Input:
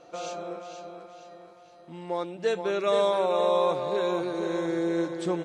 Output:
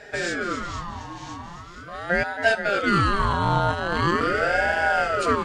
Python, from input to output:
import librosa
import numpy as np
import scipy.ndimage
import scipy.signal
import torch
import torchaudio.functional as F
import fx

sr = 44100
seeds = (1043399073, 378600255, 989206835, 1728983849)

p1 = x + fx.echo_single(x, sr, ms=1025, db=-12.5, dry=0)
p2 = fx.robotise(p1, sr, hz=171.0, at=(3.33, 4.21))
p3 = fx.low_shelf(p2, sr, hz=210.0, db=-7.0)
p4 = p3 + 10.0 ** (-8.5 / 20.0) * np.pad(p3, (int(270 * sr / 1000.0), 0))[:len(p3)]
p5 = fx.rider(p4, sr, range_db=3, speed_s=0.5)
p6 = fx.ring_lfo(p5, sr, carrier_hz=760.0, swing_pct=50, hz=0.42)
y = p6 * 10.0 ** (9.0 / 20.0)